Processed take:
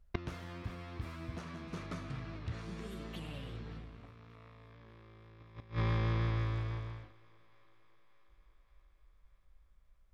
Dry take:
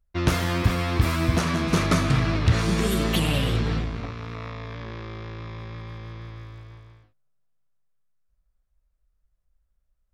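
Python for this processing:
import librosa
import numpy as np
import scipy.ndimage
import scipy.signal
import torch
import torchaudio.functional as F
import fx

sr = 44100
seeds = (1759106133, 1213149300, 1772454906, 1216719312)

y = fx.lowpass(x, sr, hz=3800.0, slope=6)
y = fx.gate_flip(y, sr, shuts_db=-28.0, range_db=-27)
y = fx.echo_thinned(y, sr, ms=581, feedback_pct=64, hz=280.0, wet_db=-23.5)
y = F.gain(torch.from_numpy(y), 6.0).numpy()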